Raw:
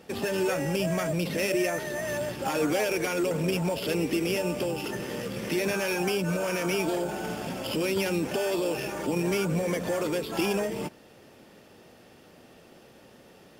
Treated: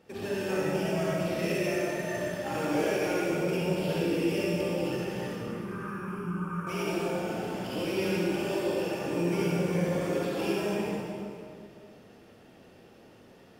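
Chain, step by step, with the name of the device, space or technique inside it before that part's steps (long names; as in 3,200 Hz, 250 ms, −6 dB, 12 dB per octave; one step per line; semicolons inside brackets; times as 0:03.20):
0:05.29–0:06.67: drawn EQ curve 140 Hz 0 dB, 300 Hz −5 dB, 670 Hz −26 dB, 1,200 Hz +9 dB, 1,900 Hz −15 dB, 5,100 Hz −27 dB, 10,000 Hz −13 dB, 15,000 Hz −18 dB
swimming-pool hall (convolution reverb RT60 2.3 s, pre-delay 42 ms, DRR −6.5 dB; high-shelf EQ 4,300 Hz −5.5 dB)
level −9 dB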